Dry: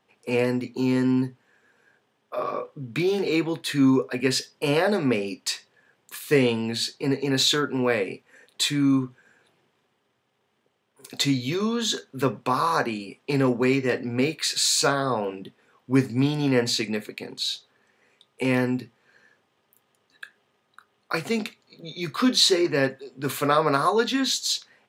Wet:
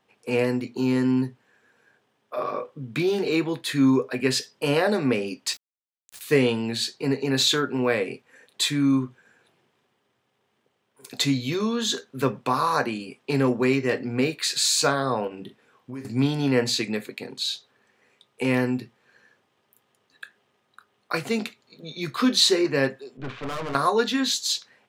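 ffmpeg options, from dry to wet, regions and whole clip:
-filter_complex "[0:a]asettb=1/sr,asplit=3[a][b][c];[a]atrim=end=5.534[d];[b]atrim=start=5.53:end=6.21,asetpts=PTS-STARTPTS,afade=t=in:d=0.004:c=qsin,afade=t=out:st=0.676:d=0.004:c=qsin,bandpass=f=6.4k:t=q:w=1.1,aeval=exprs='val(0)*gte(abs(val(0)),0.0106)':c=same[e];[c]atrim=start=6.206[f];[d][e]acrossfade=d=0.004:c1=hsin:c2=qsin[g];[g][f]acrossfade=d=0.004:c1=qsin:c2=hsin,asettb=1/sr,asplit=3[h][i][j];[h]atrim=end=15.274[k];[i]atrim=start=15.27:end=16.05,asetpts=PTS-STARTPTS,afade=t=in:d=0.004:c=qsin,afade=t=out:st=0.776:d=0.004:c=qsin,acompressor=threshold=-33dB:ratio=6:attack=3.2:release=140:knee=1:detection=peak,asplit=2[l][m];[m]adelay=41,volume=-10dB[n];[l][n]amix=inputs=2:normalize=0,atrim=end_sample=34398[o];[j]atrim=start=16.046[p];[k][o]acrossfade=d=0.004:c1=hsin:c2=qsin[q];[q][p]acrossfade=d=0.004:c1=qsin:c2=hsin,asettb=1/sr,asplit=3[r][s][t];[r]atrim=end=23.174[u];[s]atrim=start=23.17:end=23.75,asetpts=PTS-STARTPTS,afade=t=in:d=0.004:c=qsin,afade=t=out:st=0.576:d=0.004:c=qsin,lowpass=f=3.2k:w=0.5412,lowpass=f=3.2k:w=1.3066,lowshelf=f=170:g=6.5,aeval=exprs='(tanh(28.2*val(0)+0.75)-tanh(0.75))/28.2':c=same[v];[t]atrim=start=23.746[w];[u][v]acrossfade=d=0.004:c1=hsin:c2=qsin[x];[x][w]acrossfade=d=0.004:c1=qsin:c2=hsin"

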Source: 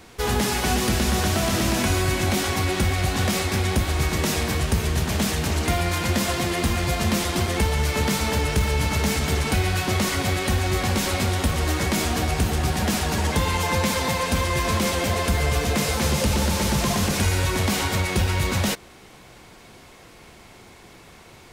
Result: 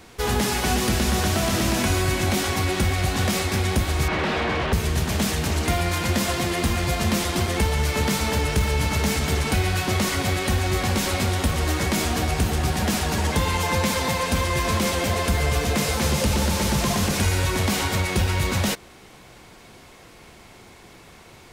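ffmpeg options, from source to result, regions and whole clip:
-filter_complex "[0:a]asettb=1/sr,asplit=3[a][b][c];[a]atrim=end=4.084[d];[b]atrim=start=4.08:end=4.73,asetpts=PTS-STARTPTS,afade=t=in:d=0.004:c=qsin,afade=t=out:st=0.646:d=0.004:c=qsin,lowpass=f=4.1k:w=0.5412,lowpass=f=4.1k:w=1.3066,aeval=exprs='0.112*(abs(mod(val(0)/0.112+3,4)-2)-1)':c=same,asplit=2[e][f];[f]highpass=f=720:p=1,volume=20dB,asoftclip=type=tanh:threshold=-14dB[g];[e][g]amix=inputs=2:normalize=0,lowpass=f=1.4k:p=1,volume=-6dB[h];[c]atrim=start=4.726[i];[d][h]acrossfade=d=0.004:c1=hsin:c2=qsin[j];[j][i]acrossfade=d=0.004:c1=qsin:c2=hsin"

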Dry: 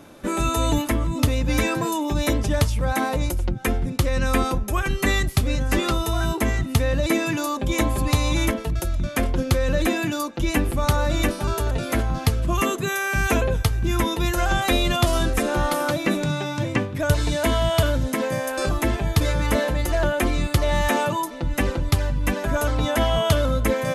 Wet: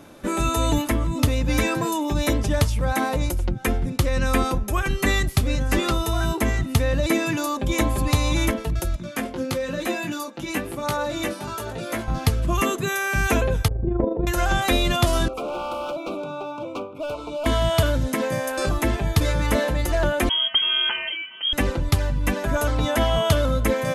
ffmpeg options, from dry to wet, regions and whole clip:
-filter_complex "[0:a]asettb=1/sr,asplit=3[a][b][c];[a]atrim=end=8.964[d];[b]atrim=start=8.96:end=12.08,asetpts=PTS-STARTPTS,afade=t=in:d=0.004:c=qsin,afade=t=out:st=3.116:d=0.004:c=qsin,highpass=160,flanger=delay=17:depth=2.2:speed=1[e];[c]atrim=start=12.076[f];[d][e]acrossfade=d=0.004:c1=hsin:c2=qsin[g];[g][f]acrossfade=d=0.004:c1=qsin:c2=hsin,asettb=1/sr,asplit=3[h][i][j];[h]atrim=end=13.684[k];[i]atrim=start=13.68:end=14.27,asetpts=PTS-STARTPTS,afade=t=in:d=0.004:c=qsin,afade=t=out:st=0.586:d=0.004:c=qsin,lowpass=f=550:t=q:w=3.5,tremolo=f=25:d=0.571[l];[j]atrim=start=14.266[m];[k][l]acrossfade=d=0.004:c1=hsin:c2=qsin[n];[n][m]acrossfade=d=0.004:c1=qsin:c2=hsin,asettb=1/sr,asplit=3[o][p][q];[o]atrim=end=15.284[r];[p]atrim=start=15.28:end=17.46,asetpts=PTS-STARTPTS,afade=t=in:d=0.004:c=qsin,afade=t=out:st=2.176:d=0.004:c=qsin,acrossover=split=310 2300:gain=0.0708 1 0.1[s][t][u];[s][t][u]amix=inputs=3:normalize=0,asoftclip=type=hard:threshold=-25dB,asuperstop=centerf=1800:order=12:qfactor=2.1[v];[q]atrim=start=17.456[w];[r][v]acrossfade=d=0.004:c1=hsin:c2=qsin[x];[x][w]acrossfade=d=0.004:c1=qsin:c2=hsin,asettb=1/sr,asplit=3[y][z][aa];[y]atrim=end=20.294[ab];[z]atrim=start=20.29:end=21.53,asetpts=PTS-STARTPTS,afade=t=in:d=0.004:c=qsin,afade=t=out:st=1.236:d=0.004:c=qsin,equalizer=f=590:w=0.72:g=-11,acrusher=bits=9:mode=log:mix=0:aa=0.000001,lowpass=f=2.8k:t=q:w=0.5098,lowpass=f=2.8k:t=q:w=0.6013,lowpass=f=2.8k:t=q:w=0.9,lowpass=f=2.8k:t=q:w=2.563,afreqshift=-3300[ac];[aa]atrim=start=21.526[ad];[ab][ac]acrossfade=d=0.004:c1=hsin:c2=qsin[ae];[ae][ad]acrossfade=d=0.004:c1=qsin:c2=hsin"

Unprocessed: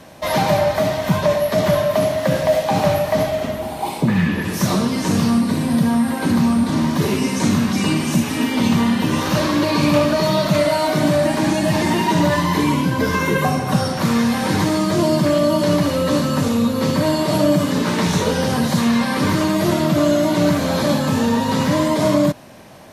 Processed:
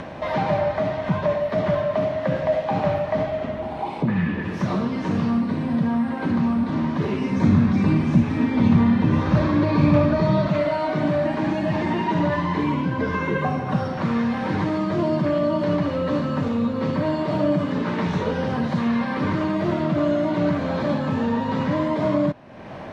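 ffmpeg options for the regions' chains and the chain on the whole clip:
-filter_complex "[0:a]asettb=1/sr,asplit=3[a][b][c];[a]atrim=end=7.304[d];[b]atrim=start=7.3:end=10.48,asetpts=PTS-STARTPTS,afade=t=in:d=0.004:c=qsin,afade=t=out:st=3.176:d=0.004:c=qsin,equalizer=f=67:t=o:w=2.9:g=12,bandreject=f=2.9k:w=10[e];[c]atrim=start=10.476[f];[d][e]acrossfade=d=0.004:c1=hsin:c2=qsin[g];[g][f]acrossfade=d=0.004:c1=qsin:c2=hsin,acompressor=mode=upward:threshold=-18dB:ratio=2.5,lowpass=2.4k,volume=-5dB"

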